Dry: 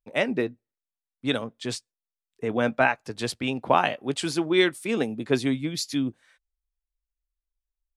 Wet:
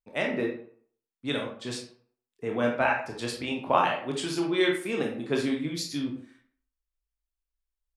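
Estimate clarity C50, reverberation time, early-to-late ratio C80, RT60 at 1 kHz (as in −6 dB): 5.0 dB, 0.55 s, 10.0 dB, 0.60 s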